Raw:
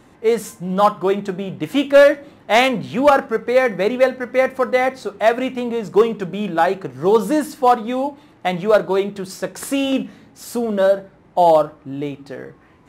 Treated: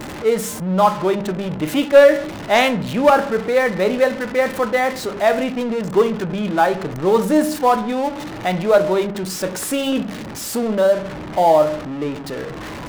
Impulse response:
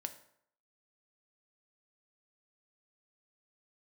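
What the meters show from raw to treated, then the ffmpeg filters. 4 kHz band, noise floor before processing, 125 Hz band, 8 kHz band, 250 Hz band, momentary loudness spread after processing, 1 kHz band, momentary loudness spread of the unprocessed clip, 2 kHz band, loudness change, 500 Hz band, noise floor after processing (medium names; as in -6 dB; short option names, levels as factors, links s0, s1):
+1.0 dB, -50 dBFS, +3.0 dB, +5.0 dB, +1.5 dB, 10 LU, -0.5 dB, 13 LU, 0.0 dB, 0.0 dB, 0.0 dB, -31 dBFS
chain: -filter_complex "[0:a]aeval=exprs='val(0)+0.5*0.0668*sgn(val(0))':c=same,asplit=2[s0][s1];[1:a]atrim=start_sample=2205,afade=t=out:st=0.24:d=0.01,atrim=end_sample=11025[s2];[s1][s2]afir=irnorm=-1:irlink=0,volume=2.82[s3];[s0][s3]amix=inputs=2:normalize=0,anlmdn=3980,volume=0.266"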